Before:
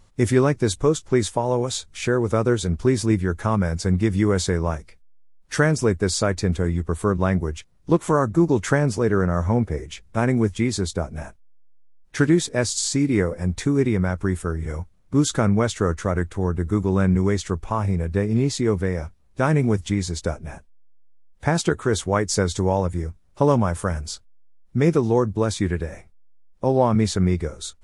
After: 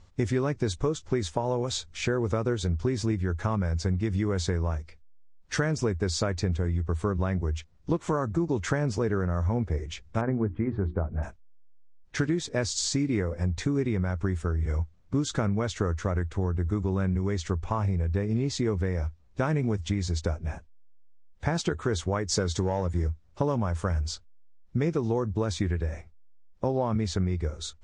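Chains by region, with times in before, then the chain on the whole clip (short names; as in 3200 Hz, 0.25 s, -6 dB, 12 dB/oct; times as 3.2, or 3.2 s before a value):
10.21–11.23 LPF 1600 Hz 24 dB/oct + notches 60/120/180/240/300/360 Hz
22.32–23.08 HPF 100 Hz 6 dB/oct + bell 2500 Hz -6 dB 0.23 oct + sample leveller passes 1
whole clip: LPF 7000 Hz 24 dB/oct; bell 79 Hz +8.5 dB 0.44 oct; compressor, threshold -21 dBFS; gain -2 dB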